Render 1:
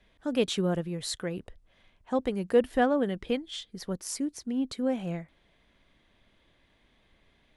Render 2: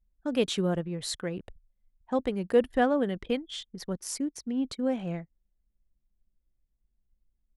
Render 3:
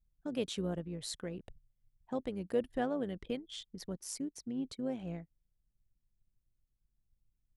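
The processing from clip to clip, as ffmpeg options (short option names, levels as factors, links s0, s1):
-af "anlmdn=0.0158"
-filter_complex "[0:a]equalizer=f=1400:w=0.61:g=-4,asplit=2[s0][s1];[s1]acompressor=threshold=0.0126:ratio=6,volume=0.891[s2];[s0][s2]amix=inputs=2:normalize=0,tremolo=f=110:d=0.4,volume=0.398"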